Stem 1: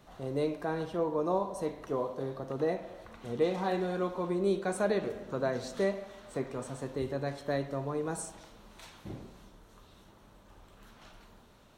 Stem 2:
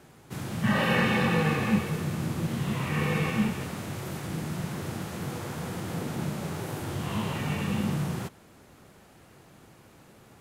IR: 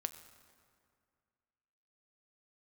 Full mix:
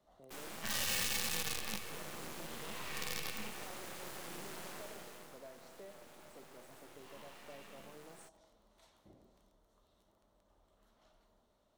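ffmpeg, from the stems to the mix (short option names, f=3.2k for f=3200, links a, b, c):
-filter_complex "[0:a]equalizer=f=630:t=o:w=0.33:g=7,equalizer=f=1.6k:t=o:w=0.33:g=-5,equalizer=f=2.5k:t=o:w=0.33:g=-7,acompressor=threshold=-43dB:ratio=2,equalizer=f=130:w=1.8:g=-7,volume=-15.5dB[a];[1:a]highpass=430,acrusher=bits=5:dc=4:mix=0:aa=0.000001,volume=-2.5dB,afade=t=out:st=4.6:d=0.79:silence=0.223872[b];[a][b]amix=inputs=2:normalize=0,acrossover=split=150|3000[c][d][e];[d]acompressor=threshold=-44dB:ratio=6[f];[c][f][e]amix=inputs=3:normalize=0"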